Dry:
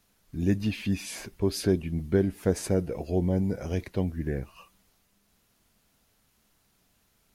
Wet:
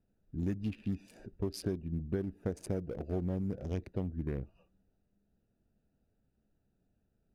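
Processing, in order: Wiener smoothing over 41 samples; compressor 6:1, threshold -27 dBFS, peak gain reduction 9 dB; gain -3.5 dB

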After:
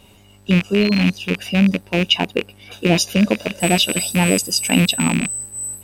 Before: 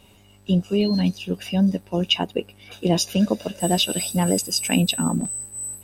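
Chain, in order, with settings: rattling part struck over -32 dBFS, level -15 dBFS; gain +4 dB

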